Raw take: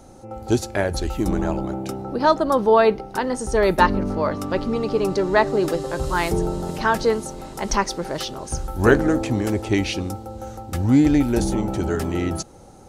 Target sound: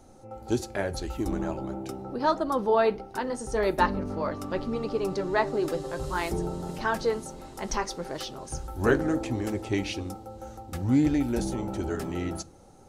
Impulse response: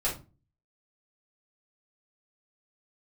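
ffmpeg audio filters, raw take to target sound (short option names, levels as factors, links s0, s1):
-filter_complex "[0:a]flanger=delay=2.6:depth=5:regen=-59:speed=1.6:shape=sinusoidal,asplit=2[s0][s1];[1:a]atrim=start_sample=2205[s2];[s1][s2]afir=irnorm=-1:irlink=0,volume=0.0668[s3];[s0][s3]amix=inputs=2:normalize=0,volume=0.631"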